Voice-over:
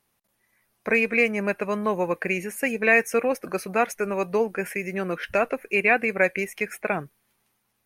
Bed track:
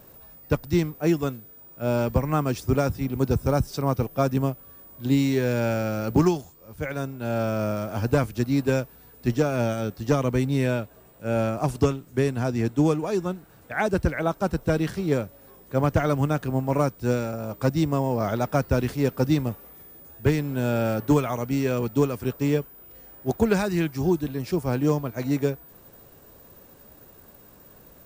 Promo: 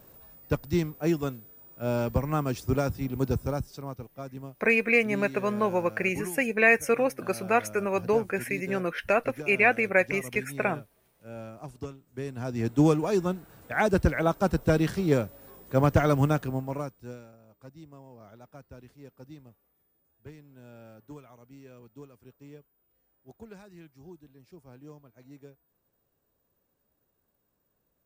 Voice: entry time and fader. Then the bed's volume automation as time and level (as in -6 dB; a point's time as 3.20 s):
3.75 s, -1.5 dB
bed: 3.30 s -4 dB
4.07 s -17 dB
12.02 s -17 dB
12.83 s 0 dB
16.30 s 0 dB
17.44 s -25.5 dB